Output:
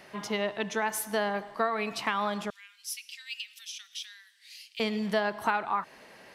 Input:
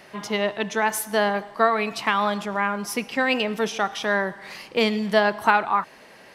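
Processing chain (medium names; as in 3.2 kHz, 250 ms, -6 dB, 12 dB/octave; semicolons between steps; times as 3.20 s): compression 2:1, threshold -23 dBFS, peak gain reduction 6.5 dB; 2.50–4.80 s: inverse Chebyshev high-pass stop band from 500 Hz, stop band 80 dB; trim -4 dB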